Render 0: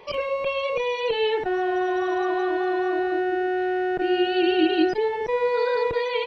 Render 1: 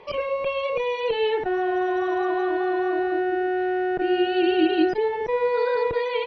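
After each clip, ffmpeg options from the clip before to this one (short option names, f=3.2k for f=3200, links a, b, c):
-af "aemphasis=mode=reproduction:type=50fm"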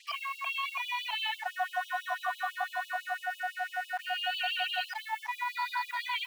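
-af "acrusher=bits=7:mix=0:aa=0.5,asubboost=boost=6.5:cutoff=71,afftfilt=real='re*gte(b*sr/1024,630*pow(2800/630,0.5+0.5*sin(2*PI*6*pts/sr)))':imag='im*gte(b*sr/1024,630*pow(2800/630,0.5+0.5*sin(2*PI*6*pts/sr)))':win_size=1024:overlap=0.75"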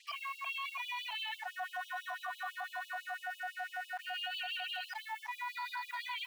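-af "alimiter=level_in=3dB:limit=-24dB:level=0:latency=1:release=22,volume=-3dB,volume=-4.5dB"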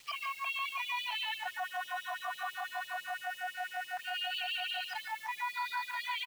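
-af "acrusher=bits=9:mix=0:aa=0.000001,aecho=1:1:144:0.376,volume=3dB"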